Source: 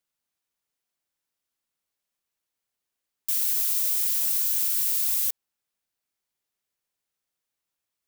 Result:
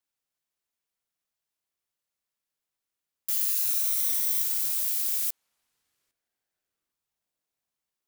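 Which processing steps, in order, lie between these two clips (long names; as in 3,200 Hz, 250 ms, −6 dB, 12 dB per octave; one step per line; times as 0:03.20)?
0:03.30–0:04.42: EQ curve with evenly spaced ripples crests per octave 1.8, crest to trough 9 dB
feedback echo with a band-pass in the loop 807 ms, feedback 70%, band-pass 370 Hz, level −22 dB
ring modulator whose carrier an LFO sweeps 660 Hz, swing 75%, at 0.47 Hz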